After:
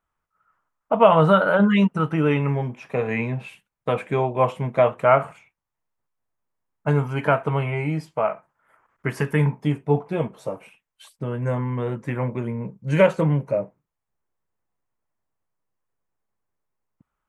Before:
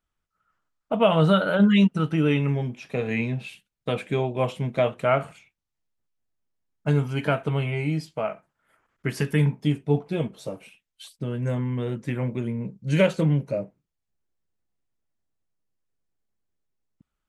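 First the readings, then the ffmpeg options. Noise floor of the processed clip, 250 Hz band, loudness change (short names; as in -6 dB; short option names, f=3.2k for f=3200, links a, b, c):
-83 dBFS, 0.0 dB, +2.5 dB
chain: -af "equalizer=f=125:t=o:w=1:g=3,equalizer=f=500:t=o:w=1:g=4,equalizer=f=1k:t=o:w=1:g=11,equalizer=f=2k:t=o:w=1:g=4,equalizer=f=4k:t=o:w=1:g=-6,volume=-2dB"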